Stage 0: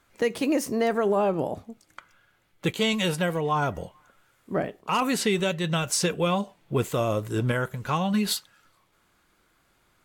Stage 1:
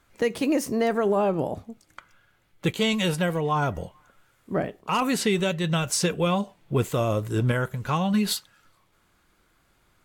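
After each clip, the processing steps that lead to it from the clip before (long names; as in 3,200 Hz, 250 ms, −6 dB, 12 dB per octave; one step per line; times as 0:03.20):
low-shelf EQ 140 Hz +5.5 dB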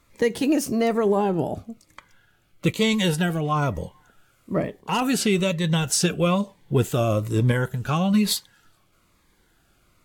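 phaser whose notches keep moving one way falling 1.1 Hz
level +3.5 dB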